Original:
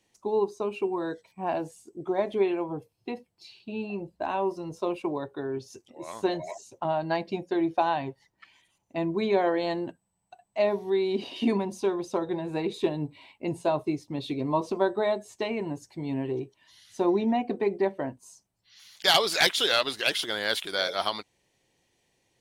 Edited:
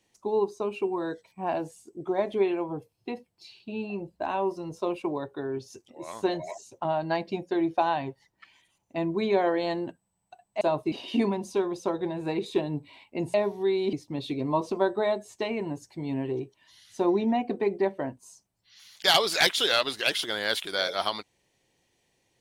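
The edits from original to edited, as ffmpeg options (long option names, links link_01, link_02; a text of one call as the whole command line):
ffmpeg -i in.wav -filter_complex "[0:a]asplit=5[link_01][link_02][link_03][link_04][link_05];[link_01]atrim=end=10.612[link_06];[link_02]atrim=start=13.618:end=13.932[link_07];[link_03]atrim=start=11.198:end=13.622[link_08];[link_04]atrim=start=10.608:end=11.202[link_09];[link_05]atrim=start=13.928[link_10];[link_06][link_07]acrossfade=duration=0.004:curve1=hsin:curve2=hsin[link_11];[link_11][link_08]acrossfade=duration=0.004:curve1=hsin:curve2=hsin[link_12];[link_12][link_09]acrossfade=duration=0.004:curve1=hsin:curve2=hsin[link_13];[link_13][link_10]acrossfade=duration=0.004:curve1=hsin:curve2=hsin" out.wav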